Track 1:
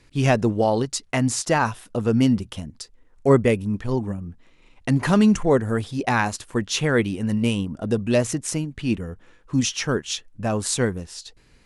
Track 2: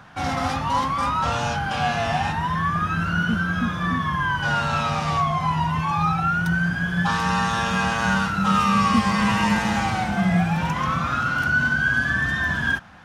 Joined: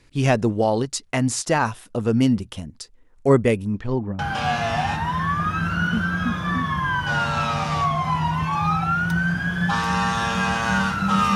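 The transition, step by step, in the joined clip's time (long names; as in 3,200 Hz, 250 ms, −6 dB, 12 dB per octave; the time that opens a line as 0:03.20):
track 1
0:03.70–0:04.19: low-pass filter 8,400 Hz → 1,200 Hz
0:04.19: continue with track 2 from 0:01.55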